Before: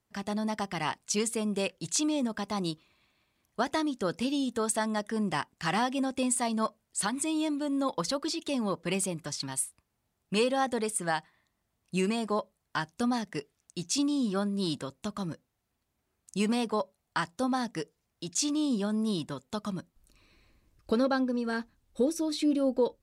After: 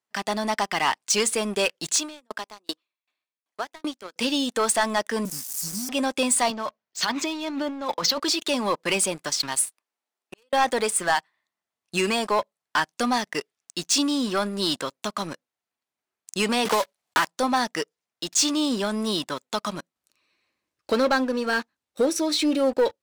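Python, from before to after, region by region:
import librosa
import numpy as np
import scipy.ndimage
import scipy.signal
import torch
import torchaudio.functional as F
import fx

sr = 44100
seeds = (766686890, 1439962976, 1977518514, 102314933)

y = fx.chain(x, sr, fx.highpass(hz=240.0, slope=24),
    fx.tremolo_decay(direction='decaying', hz=2.6, depth_db=28), at=(1.92, 4.16))
y = fx.chain(y, sr, fx.crossing_spikes(level_db=-28.5),
    fx.cheby2_bandstop(low_hz=460.0, high_hz=3200.0, order=4, stop_db=40), at=(5.25, 5.89))
y = fx.chain(y, sr, fx.steep_lowpass(hz=6500.0, slope=48),
    fx.over_compress(threshold_db=-34.0, ratio=-1.0),
    fx.band_widen(depth_pct=40), at=(6.5, 8.2))
y = fx.chain(y, sr, fx.highpass(hz=250.0, slope=24),
    fx.gate_flip(shuts_db=-31.0, range_db=-31), at=(9.65, 10.53))
y = fx.chain(y, sr, fx.block_float(bits=3),
    fx.band_squash(depth_pct=100), at=(16.65, 17.26))
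y = fx.weighting(y, sr, curve='A')
y = fx.leveller(y, sr, passes=3)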